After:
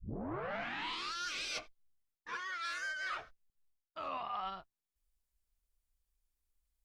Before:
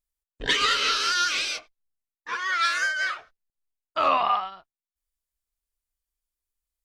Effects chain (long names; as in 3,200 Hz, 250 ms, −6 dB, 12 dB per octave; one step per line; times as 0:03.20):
turntable start at the beginning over 1.21 s
low-shelf EQ 250 Hz +9.5 dB
reversed playback
downward compressor 16 to 1, threshold −35 dBFS, peak gain reduction 21 dB
reversed playback
level −2 dB